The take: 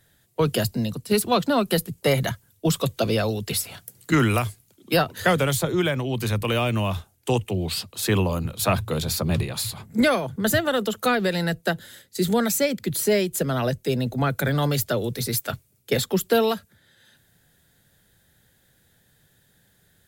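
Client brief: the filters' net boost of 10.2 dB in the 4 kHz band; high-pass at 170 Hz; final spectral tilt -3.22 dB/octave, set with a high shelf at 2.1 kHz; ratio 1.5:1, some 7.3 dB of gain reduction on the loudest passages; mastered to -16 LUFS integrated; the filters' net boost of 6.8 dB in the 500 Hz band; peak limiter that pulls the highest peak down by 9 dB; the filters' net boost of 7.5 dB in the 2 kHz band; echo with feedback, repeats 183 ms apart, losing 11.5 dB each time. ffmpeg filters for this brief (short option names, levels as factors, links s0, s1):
-af "highpass=170,equalizer=f=500:t=o:g=7.5,equalizer=f=2000:t=o:g=3.5,highshelf=f=2100:g=8.5,equalizer=f=4000:t=o:g=3.5,acompressor=threshold=0.0355:ratio=1.5,alimiter=limit=0.178:level=0:latency=1,aecho=1:1:183|366|549:0.266|0.0718|0.0194,volume=2.99"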